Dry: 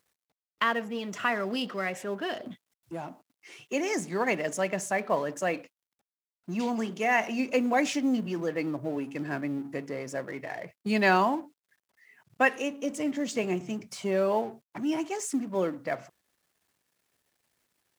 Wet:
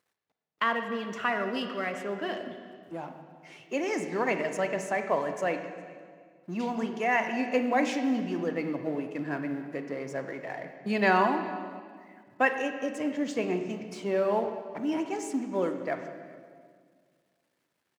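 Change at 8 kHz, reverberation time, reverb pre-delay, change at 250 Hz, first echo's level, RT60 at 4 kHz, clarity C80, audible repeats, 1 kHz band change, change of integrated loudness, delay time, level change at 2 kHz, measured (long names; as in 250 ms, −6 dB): −7.0 dB, 1.9 s, 31 ms, −1.0 dB, −24.0 dB, 1.6 s, 9.0 dB, 1, +0.5 dB, −0.5 dB, 410 ms, −0.5 dB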